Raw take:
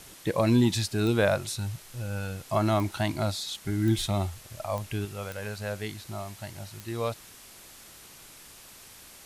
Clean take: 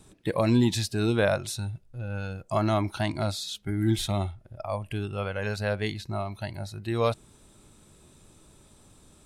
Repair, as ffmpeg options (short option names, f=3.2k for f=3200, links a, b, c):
-af "adeclick=t=4,afwtdn=0.004,asetnsamples=n=441:p=0,asendcmd='5.05 volume volume 5.5dB',volume=0dB"